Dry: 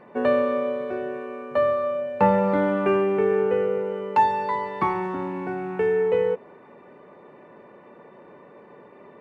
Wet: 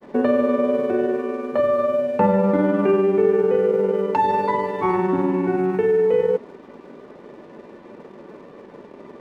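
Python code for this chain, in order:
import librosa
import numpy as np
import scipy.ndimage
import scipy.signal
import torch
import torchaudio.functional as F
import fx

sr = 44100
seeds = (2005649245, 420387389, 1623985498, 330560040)

p1 = fx.peak_eq(x, sr, hz=280.0, db=9.0, octaves=1.7)
p2 = fx.over_compress(p1, sr, threshold_db=-22.0, ratio=-1.0)
p3 = p1 + (p2 * 10.0 ** (-1.0 / 20.0))
p4 = np.sign(p3) * np.maximum(np.abs(p3) - 10.0 ** (-46.5 / 20.0), 0.0)
p5 = fx.granulator(p4, sr, seeds[0], grain_ms=100.0, per_s=20.0, spray_ms=17.0, spread_st=0)
y = p5 * 10.0 ** (-3.0 / 20.0)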